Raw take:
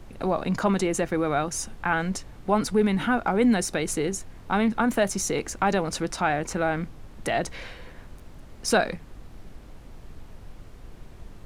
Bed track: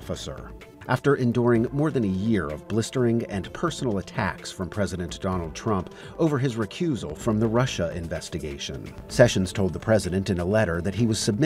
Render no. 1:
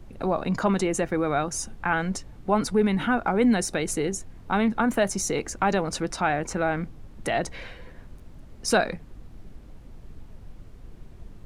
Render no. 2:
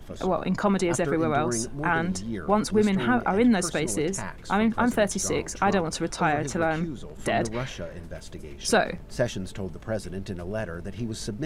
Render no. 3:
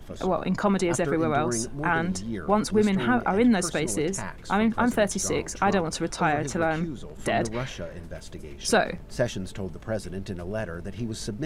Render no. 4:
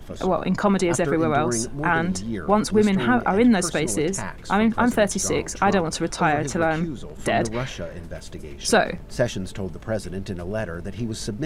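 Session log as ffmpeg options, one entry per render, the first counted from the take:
-af "afftdn=nr=6:nf=-46"
-filter_complex "[1:a]volume=-9.5dB[a];[0:a][a]amix=inputs=2:normalize=0"
-af anull
-af "volume=3.5dB"

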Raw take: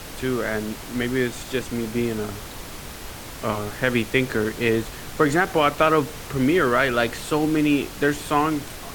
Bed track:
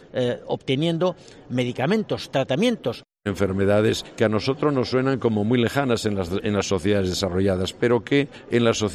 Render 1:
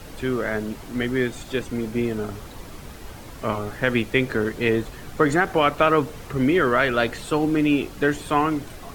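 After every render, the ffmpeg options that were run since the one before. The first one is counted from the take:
-af "afftdn=nr=8:nf=-37"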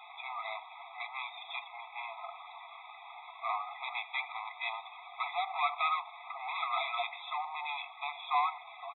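-af "aresample=8000,asoftclip=type=tanh:threshold=-23dB,aresample=44100,afftfilt=real='re*eq(mod(floor(b*sr/1024/660),2),1)':imag='im*eq(mod(floor(b*sr/1024/660),2),1)':win_size=1024:overlap=0.75"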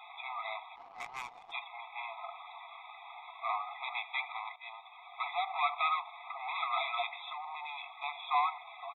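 -filter_complex "[0:a]asplit=3[a][b][c];[a]afade=t=out:st=0.75:d=0.02[d];[b]adynamicsmooth=sensitivity=7.5:basefreq=530,afade=t=in:st=0.75:d=0.02,afade=t=out:st=1.51:d=0.02[e];[c]afade=t=in:st=1.51:d=0.02[f];[d][e][f]amix=inputs=3:normalize=0,asettb=1/sr,asplit=3[g][h][i];[g]atrim=end=7.274[j];[h]atrim=start=7.27:end=8.04,asetpts=PTS-STARTPTS,afade=t=in:d=0.004:c=qsin,afade=t=out:st=0.766:d=0.004:c=qsin,acompressor=threshold=-38dB:ratio=6:attack=3.2:release=140:knee=1:detection=peak[k];[i]atrim=start=8.036[l];[j][k]acrossfade=d=0.004:c1=hsin:c2=qsin[m];[m][l]acrossfade=d=0.004:c1=qsin:c2=hsin,asplit=2[n][o];[n]atrim=end=4.56,asetpts=PTS-STARTPTS,afade=t=out:st=4.556:d=0.004:c=hsin:silence=0.188365[p];[o]atrim=start=4.56,asetpts=PTS-STARTPTS,afade=t=in:d=0.77:silence=0.188365[q];[p][q]concat=n=2:v=0:a=1"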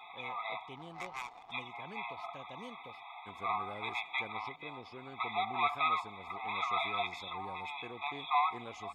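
-filter_complex "[1:a]volume=-29dB[a];[0:a][a]amix=inputs=2:normalize=0"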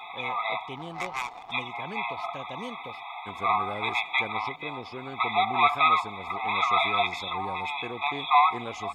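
-af "volume=10dB"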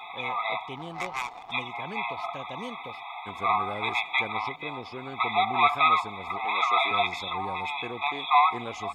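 -filter_complex "[0:a]asettb=1/sr,asplit=3[a][b][c];[a]atrim=end=6.454[d];[b]atrim=start=6.45:end=6.91,asetpts=PTS-STARTPTS,afade=t=in:d=0.004:c=qsin,afade=t=out:st=0.456:d=0.004:c=qsin,highpass=f=270:w=0.5412,highpass=f=270:w=1.3066[e];[c]atrim=start=6.906[f];[d][e]acrossfade=d=0.004:c1=hsin:c2=qsin[g];[g][f]acrossfade=d=0.004:c1=qsin:c2=hsin,asettb=1/sr,asplit=3[h][i][j];[h]atrim=end=8.114[k];[i]atrim=start=8.11:end=8.52,asetpts=PTS-STARTPTS,afade=t=in:d=0.004:c=qsin,afade=t=out:st=0.406:d=0.004:c=qsin,equalizer=f=73:t=o:w=2.5:g=-12[l];[j]atrim=start=8.516[m];[k][l]acrossfade=d=0.004:c1=hsin:c2=qsin[n];[n][m]acrossfade=d=0.004:c1=qsin:c2=hsin"

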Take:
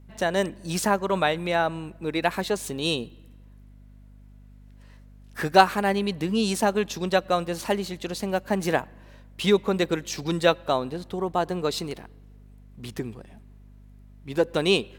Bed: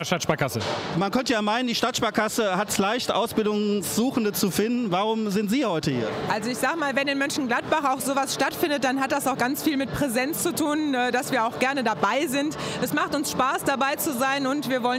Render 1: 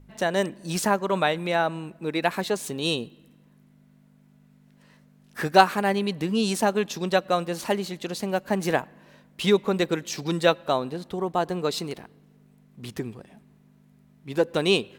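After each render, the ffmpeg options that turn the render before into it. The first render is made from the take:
-af "bandreject=f=50:t=h:w=4,bandreject=f=100:t=h:w=4"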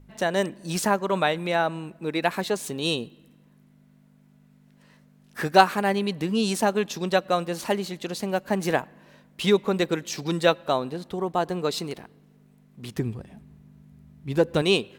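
-filter_complex "[0:a]asettb=1/sr,asplit=3[a][b][c];[a]atrim=end=12.984[d];[b]atrim=start=12.98:end=14.62,asetpts=PTS-STARTPTS,afade=t=in:d=0.004:c=qsin,afade=t=out:st=1.636:d=0.004:c=qsin,equalizer=f=65:t=o:w=2.4:g=14.5[e];[c]atrim=start=14.616[f];[d][e]acrossfade=d=0.004:c1=hsin:c2=qsin[g];[g][f]acrossfade=d=0.004:c1=qsin:c2=hsin"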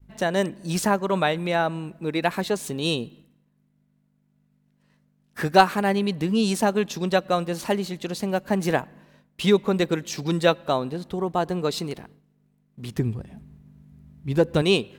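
-af "agate=range=-33dB:threshold=-47dB:ratio=3:detection=peak,lowshelf=f=190:g=6.5"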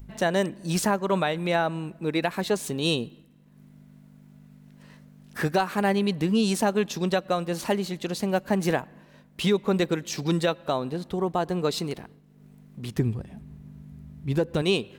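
-af "acompressor=mode=upward:threshold=-36dB:ratio=2.5,alimiter=limit=-13dB:level=0:latency=1:release=221"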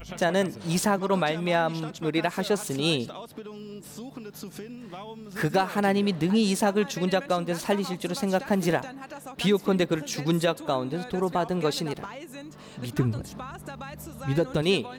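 -filter_complex "[1:a]volume=-17dB[a];[0:a][a]amix=inputs=2:normalize=0"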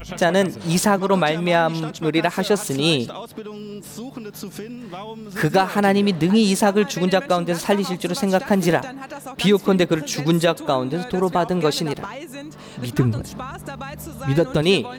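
-af "volume=6.5dB"

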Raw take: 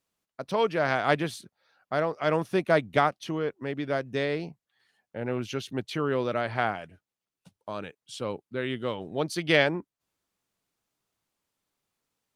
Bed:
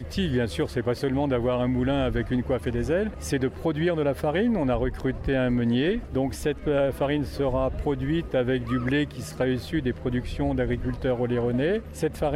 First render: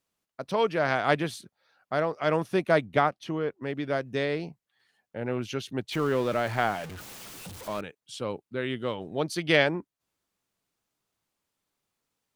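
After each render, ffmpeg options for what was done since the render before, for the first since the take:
-filter_complex "[0:a]asettb=1/sr,asplit=3[a][b][c];[a]atrim=end=2.854[d];[b]atrim=start=2.85:end=3.63,asetpts=PTS-STARTPTS,afade=t=in:d=0.004:c=qsin,afade=t=out:st=0.776:d=0.004:c=qsin,highshelf=f=4k:g=-7[e];[c]atrim=start=3.626[f];[d][e]acrossfade=d=0.004:c1=hsin:c2=qsin[g];[g][f]acrossfade=d=0.004:c1=qsin:c2=hsin,asettb=1/sr,asplit=3[h][i][j];[h]atrim=end=5.924[k];[i]atrim=start=5.92:end=7.81,asetpts=PTS-STARTPTS,afade=t=in:d=0.004:c=qsin,afade=t=out:st=1.886:d=0.004:c=qsin,aeval=exprs='val(0)+0.5*0.0158*sgn(val(0))':c=same[l];[j]atrim=start=7.806[m];[k][l]acrossfade=d=0.004:c1=hsin:c2=qsin[n];[n][m]acrossfade=d=0.004:c1=qsin:c2=hsin"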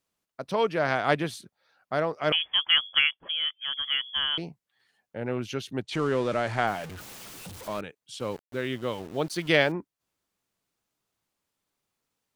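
-filter_complex "[0:a]asettb=1/sr,asplit=3[a][b][c];[a]atrim=end=2.324[d];[b]atrim=start=2.32:end=4.38,asetpts=PTS-STARTPTS,afade=t=in:d=0.004:c=qsin,afade=t=out:st=2.056:d=0.004:c=qsin,lowpass=f=3k:t=q:w=0.5098,lowpass=f=3k:t=q:w=0.6013,lowpass=f=3k:t=q:w=0.9,lowpass=f=3k:t=q:w=2.563,afreqshift=-3500[e];[c]atrim=start=4.376[f];[d][e]acrossfade=d=0.004:c1=hsin:c2=qsin[g];[g][f]acrossfade=d=0.004:c1=qsin:c2=hsin,asplit=3[h][i][j];[h]afade=t=out:st=5.82:d=0.02[k];[i]lowpass=f=9.6k:w=0.5412,lowpass=f=9.6k:w=1.3066,afade=t=in:st=5.82:d=0.02,afade=t=out:st=6.66:d=0.02[l];[j]afade=t=in:st=6.66:d=0.02[m];[k][l][m]amix=inputs=3:normalize=0,asettb=1/sr,asplit=3[n][o][p];[n]atrim=end=8.204[q];[o]atrim=start=8.2:end=9.72,asetpts=PTS-STARTPTS,afade=t=in:d=0.004:c=qsin,afade=t=out:st=1.516:d=0.004:c=qsin,aeval=exprs='val(0)*gte(abs(val(0)),0.00708)':c=same[r];[p]atrim=start=9.716[s];[q][r]acrossfade=d=0.004:c1=hsin:c2=qsin[t];[t][s]acrossfade=d=0.004:c1=qsin:c2=hsin"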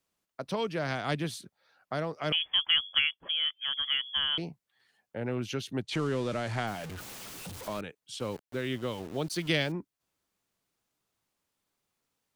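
-filter_complex "[0:a]acrossover=split=270|3000[a][b][c];[b]acompressor=threshold=-34dB:ratio=3[d];[a][d][c]amix=inputs=3:normalize=0"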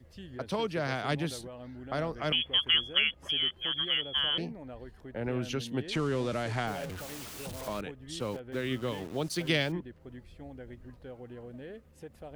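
-filter_complex "[1:a]volume=-20.5dB[a];[0:a][a]amix=inputs=2:normalize=0"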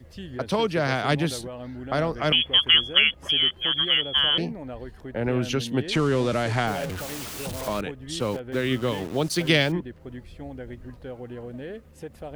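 -af "volume=8dB"

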